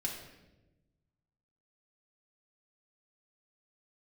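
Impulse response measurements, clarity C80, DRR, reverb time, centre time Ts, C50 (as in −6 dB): 7.0 dB, −2.5 dB, 1.0 s, 38 ms, 4.5 dB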